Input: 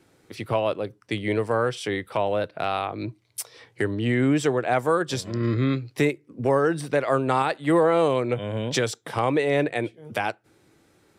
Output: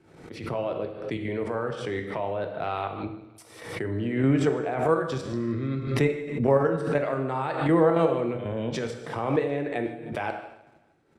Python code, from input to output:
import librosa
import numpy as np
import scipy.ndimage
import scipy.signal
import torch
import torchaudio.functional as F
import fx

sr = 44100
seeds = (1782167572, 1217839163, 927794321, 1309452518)

p1 = scipy.signal.sosfilt(scipy.signal.butter(2, 11000.0, 'lowpass', fs=sr, output='sos'), x)
p2 = fx.high_shelf(p1, sr, hz=2700.0, db=-11.5)
p3 = fx.level_steps(p2, sr, step_db=10)
p4 = p3 + fx.echo_feedback(p3, sr, ms=154, feedback_pct=48, wet_db=-19, dry=0)
p5 = fx.rev_gated(p4, sr, seeds[0], gate_ms=300, shape='falling', drr_db=4.0)
y = fx.pre_swell(p5, sr, db_per_s=71.0)